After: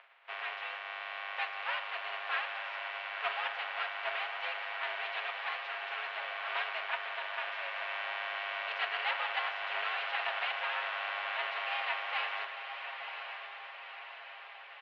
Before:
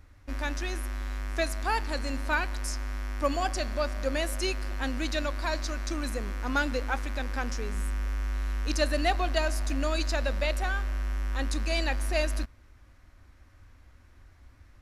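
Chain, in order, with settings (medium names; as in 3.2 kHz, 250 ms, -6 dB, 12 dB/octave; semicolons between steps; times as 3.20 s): spectral contrast reduction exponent 0.31; comb 7.4 ms, depth 85%; vibrato 10 Hz 15 cents; mistuned SSB +140 Hz 480–2900 Hz; echo that smears into a reverb 1024 ms, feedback 57%, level -7.5 dB; trim -6.5 dB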